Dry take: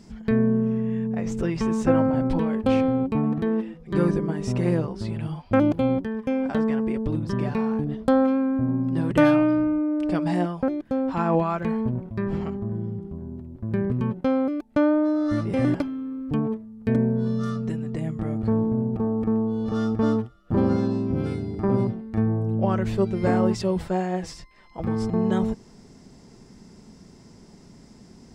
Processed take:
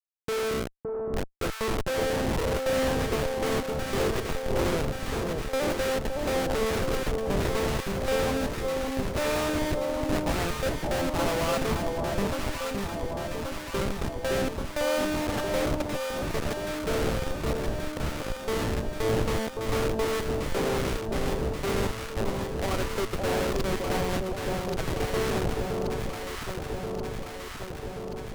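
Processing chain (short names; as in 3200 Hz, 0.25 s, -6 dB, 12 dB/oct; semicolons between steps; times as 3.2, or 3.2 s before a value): low-pass opened by the level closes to 2900 Hz, open at -17 dBFS; steep high-pass 400 Hz 36 dB/oct; in parallel at -7 dB: requantised 6-bit, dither none; on the sum: Schmitt trigger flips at -26 dBFS; on a send: echo with dull and thin repeats by turns 0.565 s, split 990 Hz, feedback 83%, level -2.5 dB; on the sum: Doppler distortion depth 0.42 ms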